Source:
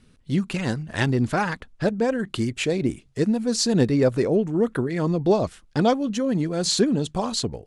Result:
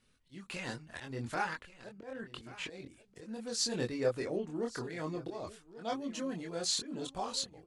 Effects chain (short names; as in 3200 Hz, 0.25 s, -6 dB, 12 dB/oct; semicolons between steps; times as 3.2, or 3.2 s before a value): 1.99–2.68 LPF 2400 Hz 6 dB/oct; auto swell 0.22 s; low shelf 410 Hz -11.5 dB; on a send: echo 1.133 s -17.5 dB; on the sum: chorus voices 6, 0.3 Hz, delay 24 ms, depth 2.1 ms; gain -5.5 dB